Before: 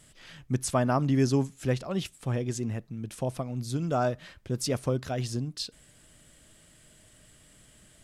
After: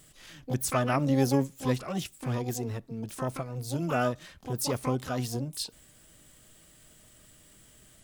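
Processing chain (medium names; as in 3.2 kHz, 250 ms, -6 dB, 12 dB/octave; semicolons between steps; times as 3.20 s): harmony voices +12 st -6 dB; treble shelf 7.7 kHz +4.5 dB; trim -2 dB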